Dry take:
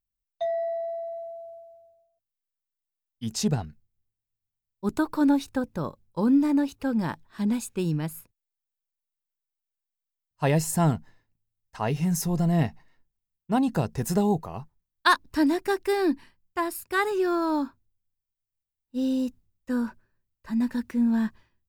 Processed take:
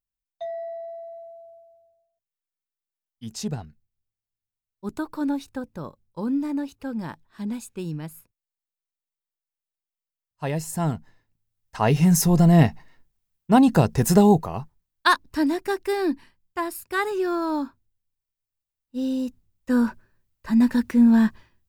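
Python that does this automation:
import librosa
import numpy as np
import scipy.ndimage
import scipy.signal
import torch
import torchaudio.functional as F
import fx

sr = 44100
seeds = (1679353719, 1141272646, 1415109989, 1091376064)

y = fx.gain(x, sr, db=fx.line((10.64, -4.5), (11.95, 8.0), (14.27, 8.0), (15.3, 0.0), (19.25, 0.0), (19.83, 7.5)))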